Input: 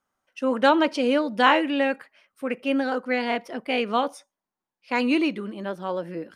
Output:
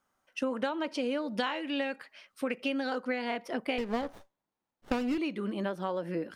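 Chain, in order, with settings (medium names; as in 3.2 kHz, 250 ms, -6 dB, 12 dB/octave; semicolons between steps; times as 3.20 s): 1.38–3.07 s: peaking EQ 4.4 kHz +7 dB 1.4 oct; compression 16:1, threshold -30 dBFS, peak gain reduction 20 dB; 3.78–5.18 s: sliding maximum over 17 samples; trim +2 dB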